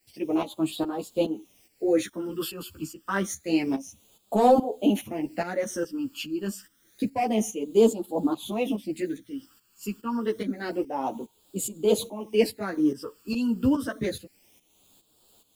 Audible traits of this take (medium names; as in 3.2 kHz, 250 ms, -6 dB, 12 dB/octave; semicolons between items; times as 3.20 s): a quantiser's noise floor 10-bit, dither triangular; phasing stages 12, 0.28 Hz, lowest notch 640–2000 Hz; tremolo saw up 2.4 Hz, depth 75%; a shimmering, thickened sound